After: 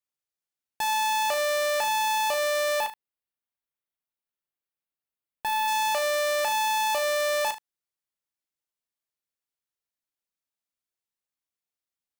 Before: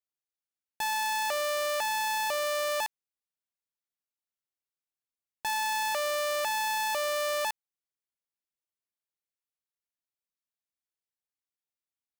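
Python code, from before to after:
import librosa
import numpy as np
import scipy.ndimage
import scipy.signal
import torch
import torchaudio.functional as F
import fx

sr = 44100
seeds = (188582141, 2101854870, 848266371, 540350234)

y = fx.peak_eq(x, sr, hz=6400.0, db=-11.5, octaves=0.89, at=(2.8, 5.68))
y = fx.leveller(y, sr, passes=1)
y = fx.room_early_taps(y, sr, ms=(36, 76), db=(-8.5, -16.5))
y = y * librosa.db_to_amplitude(2.5)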